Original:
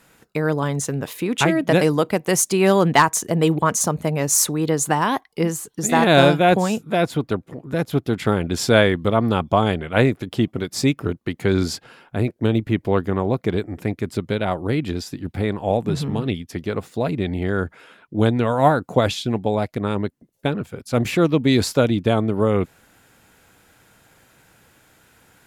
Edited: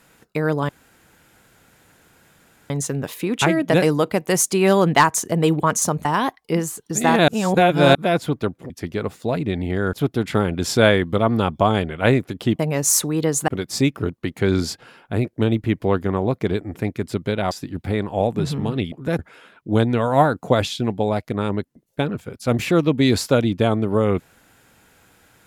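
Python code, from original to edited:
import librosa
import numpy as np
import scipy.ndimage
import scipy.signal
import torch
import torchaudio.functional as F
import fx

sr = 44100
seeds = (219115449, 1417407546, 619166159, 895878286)

y = fx.edit(x, sr, fx.insert_room_tone(at_s=0.69, length_s=2.01),
    fx.move(start_s=4.04, length_s=0.89, to_s=10.51),
    fx.reverse_span(start_s=6.16, length_s=0.67),
    fx.swap(start_s=7.58, length_s=0.27, other_s=16.42, other_length_s=1.23),
    fx.cut(start_s=14.54, length_s=0.47), tone=tone)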